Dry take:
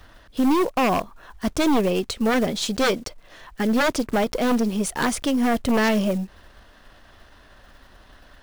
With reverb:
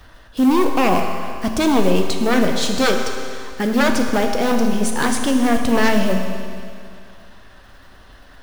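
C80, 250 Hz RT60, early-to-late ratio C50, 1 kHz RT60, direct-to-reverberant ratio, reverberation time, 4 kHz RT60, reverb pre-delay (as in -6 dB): 5.5 dB, 2.3 s, 4.5 dB, 2.3 s, 3.0 dB, 2.3 s, 2.3 s, 8 ms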